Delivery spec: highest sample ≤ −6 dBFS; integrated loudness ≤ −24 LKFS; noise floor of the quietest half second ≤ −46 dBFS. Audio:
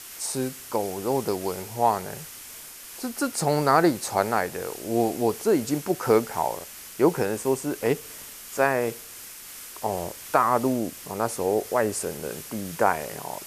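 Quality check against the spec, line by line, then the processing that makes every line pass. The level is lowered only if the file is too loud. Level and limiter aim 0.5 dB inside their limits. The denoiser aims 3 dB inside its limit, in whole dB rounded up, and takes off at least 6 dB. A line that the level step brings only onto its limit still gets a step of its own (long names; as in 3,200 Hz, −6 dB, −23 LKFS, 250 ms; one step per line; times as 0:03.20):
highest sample −5.0 dBFS: out of spec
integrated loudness −25.5 LKFS: in spec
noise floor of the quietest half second −42 dBFS: out of spec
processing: broadband denoise 7 dB, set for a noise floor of −42 dBFS
brickwall limiter −6.5 dBFS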